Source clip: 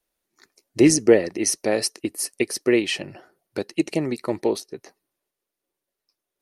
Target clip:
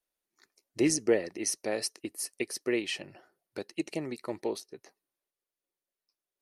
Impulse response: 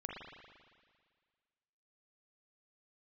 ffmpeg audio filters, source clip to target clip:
-af "lowshelf=f=400:g=-4.5,volume=-8.5dB"

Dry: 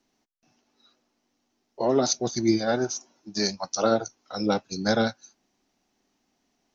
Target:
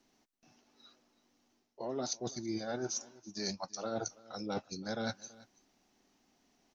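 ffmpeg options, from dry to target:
-af "areverse,acompressor=threshold=-36dB:ratio=8,areverse,aecho=1:1:330:0.0841,volume=1dB"

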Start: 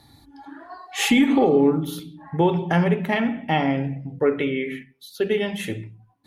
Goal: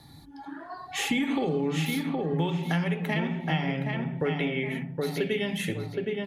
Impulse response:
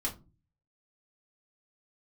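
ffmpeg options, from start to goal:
-filter_complex "[0:a]equalizer=f=160:t=o:w=0.29:g=13,asplit=2[a][b];[b]adelay=768,lowpass=f=3.3k:p=1,volume=-7dB,asplit=2[c][d];[d]adelay=768,lowpass=f=3.3k:p=1,volume=0.28,asplit=2[e][f];[f]adelay=768,lowpass=f=3.3k:p=1,volume=0.28[g];[a][c][e][g]amix=inputs=4:normalize=0,acrossover=split=470|1900[h][i][j];[h]acompressor=threshold=-29dB:ratio=4[k];[i]acompressor=threshold=-36dB:ratio=4[l];[j]acompressor=threshold=-32dB:ratio=4[m];[k][l][m]amix=inputs=3:normalize=0"

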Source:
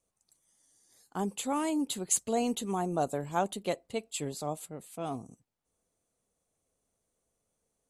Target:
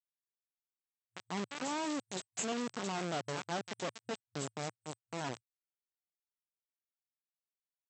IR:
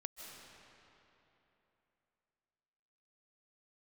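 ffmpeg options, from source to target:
-filter_complex "[0:a]adynamicequalizer=threshold=0.00316:dfrequency=170:dqfactor=2:tfrequency=170:tqfactor=2:attack=5:release=100:ratio=0.375:range=3.5:mode=cutabove:tftype=bell,acrossover=split=1100|3500[a][b][c];[a]adelay=150[d];[c]adelay=270[e];[d][b][e]amix=inputs=3:normalize=0,acrossover=split=1600[f][g];[g]acompressor=mode=upward:threshold=-46dB:ratio=2.5[h];[f][h]amix=inputs=2:normalize=0,acrusher=bits=3:dc=4:mix=0:aa=0.000001,asplit=2[i][j];[j]aeval=exprs='(mod(18.8*val(0)+1,2)-1)/18.8':c=same,volume=-5dB[k];[i][k]amix=inputs=2:normalize=0,afftfilt=real='re*between(b*sr/4096,110,8100)':imag='im*between(b*sr/4096,110,8100)':win_size=4096:overlap=0.75,volume=-4dB"

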